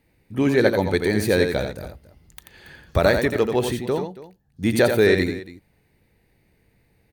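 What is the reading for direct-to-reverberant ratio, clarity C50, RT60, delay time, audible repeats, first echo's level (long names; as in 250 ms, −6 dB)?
no reverb audible, no reverb audible, no reverb audible, 86 ms, 2, −6.5 dB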